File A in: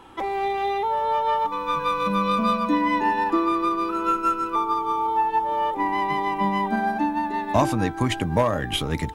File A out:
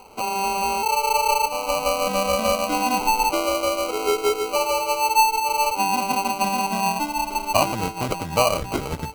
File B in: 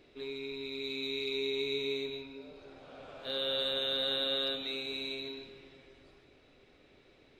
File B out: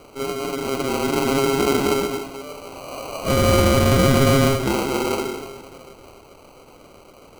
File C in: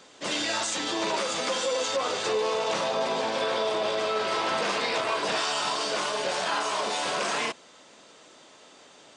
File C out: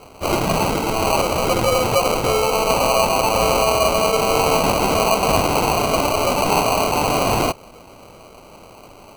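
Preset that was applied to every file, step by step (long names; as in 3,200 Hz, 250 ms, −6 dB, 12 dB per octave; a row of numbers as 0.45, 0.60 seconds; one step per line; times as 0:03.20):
low shelf with overshoot 440 Hz −6.5 dB, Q 1.5
decimation without filtering 25×
normalise the peak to −6 dBFS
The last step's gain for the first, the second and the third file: +1.5, +17.5, +10.0 decibels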